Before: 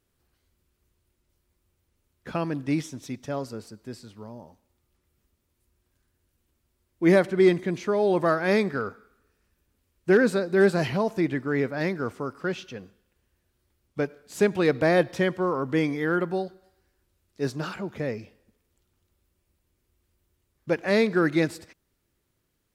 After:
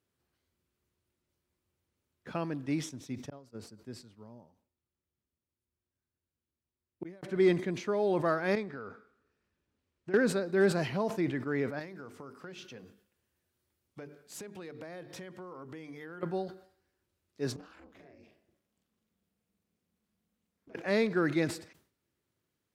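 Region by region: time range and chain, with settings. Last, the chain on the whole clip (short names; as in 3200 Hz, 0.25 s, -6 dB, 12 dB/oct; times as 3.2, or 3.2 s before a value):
2.89–7.23 low shelf 240 Hz +5 dB + flipped gate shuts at -20 dBFS, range -41 dB + upward expander, over -52 dBFS
8.55–10.14 compressor 4:1, threshold -32 dBFS + air absorption 63 m
11.79–16.23 notches 50/100/150/200/250/300/350/400/450 Hz + compressor 10:1, threshold -35 dBFS + high shelf 6800 Hz +7.5 dB
17.56–20.75 ring modulator 130 Hz + compressor 16:1, threshold -45 dBFS + doubler 42 ms -4.5 dB
whole clip: HPF 96 Hz; high shelf 8100 Hz -5 dB; sustainer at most 120 dB/s; gain -6.5 dB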